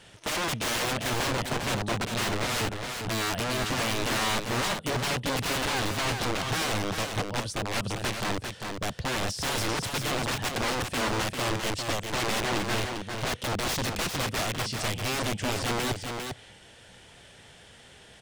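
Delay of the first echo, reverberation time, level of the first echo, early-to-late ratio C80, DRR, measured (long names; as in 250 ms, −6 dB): 398 ms, no reverb audible, −5.5 dB, no reverb audible, no reverb audible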